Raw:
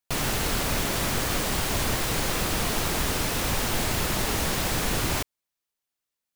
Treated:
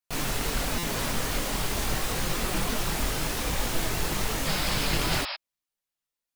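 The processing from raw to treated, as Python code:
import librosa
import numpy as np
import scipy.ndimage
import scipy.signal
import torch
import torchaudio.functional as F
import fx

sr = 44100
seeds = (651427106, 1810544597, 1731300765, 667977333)

y = fx.spec_paint(x, sr, seeds[0], shape='noise', start_s=4.45, length_s=0.89, low_hz=550.0, high_hz=5400.0, level_db=-30.0)
y = fx.chorus_voices(y, sr, voices=6, hz=0.81, base_ms=22, depth_ms=4.1, mix_pct=55)
y = fx.buffer_glitch(y, sr, at_s=(0.78,), block=256, repeats=8)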